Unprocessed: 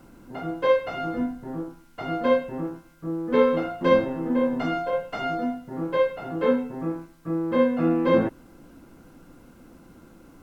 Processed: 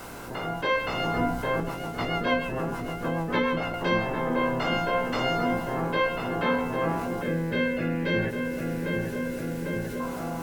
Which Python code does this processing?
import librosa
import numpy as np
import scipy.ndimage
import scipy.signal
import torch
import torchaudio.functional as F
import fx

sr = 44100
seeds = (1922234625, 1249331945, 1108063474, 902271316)

y = fx.spec_clip(x, sr, under_db=17)
y = fx.doubler(y, sr, ms=17.0, db=-5.0)
y = fx.echo_filtered(y, sr, ms=799, feedback_pct=70, hz=2000.0, wet_db=-12)
y = fx.rotary(y, sr, hz=6.7, at=(1.6, 3.74))
y = fx.rider(y, sr, range_db=4, speed_s=0.5)
y = fx.spec_box(y, sr, start_s=7.23, length_s=2.77, low_hz=630.0, high_hz=1400.0, gain_db=-14)
y = fx.env_flatten(y, sr, amount_pct=50)
y = F.gain(torch.from_numpy(y), -6.5).numpy()